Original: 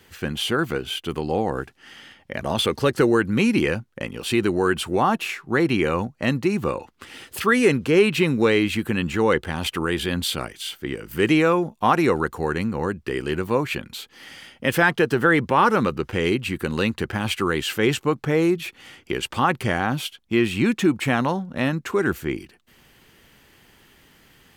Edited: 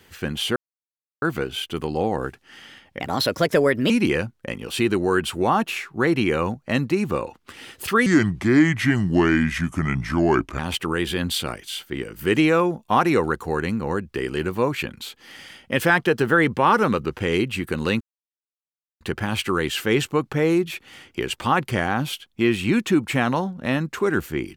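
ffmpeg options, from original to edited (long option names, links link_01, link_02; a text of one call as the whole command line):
ffmpeg -i in.wav -filter_complex "[0:a]asplit=7[link_01][link_02][link_03][link_04][link_05][link_06][link_07];[link_01]atrim=end=0.56,asetpts=PTS-STARTPTS,afade=type=out:start_time=0.556:duration=0.004:curve=hsin,apad=pad_dur=0.66[link_08];[link_02]atrim=start=0.56:end=2.344,asetpts=PTS-STARTPTS,afade=type=in:duration=0.004:curve=hsin[link_09];[link_03]atrim=start=2.34:end=3.43,asetpts=PTS-STARTPTS,asetrate=53361,aresample=44100,atrim=end_sample=39726,asetpts=PTS-STARTPTS[link_10];[link_04]atrim=start=3.426:end=7.594[link_11];[link_05]atrim=start=7.59:end=9.51,asetpts=PTS-STARTPTS,asetrate=33516,aresample=44100[link_12];[link_06]atrim=start=9.506:end=16.93,asetpts=PTS-STARTPTS,afade=type=out:start_time=7.42:duration=0.004:curve=hsin,apad=pad_dur=1[link_13];[link_07]atrim=start=16.93,asetpts=PTS-STARTPTS,afade=type=in:duration=0.004:curve=hsin[link_14];[link_08][link_09]concat=n=2:v=0:a=1[link_15];[link_15][link_10]acrossfade=duration=0.004:curve1=hsin:curve2=hsin[link_16];[link_16][link_11]acrossfade=duration=0.004:curve1=hsin:curve2=hsin[link_17];[link_17][link_12]acrossfade=duration=0.004:curve1=hsin:curve2=hsin[link_18];[link_13][link_14]concat=n=2:v=0:a=1[link_19];[link_18][link_19]acrossfade=duration=0.004:curve1=hsin:curve2=hsin" out.wav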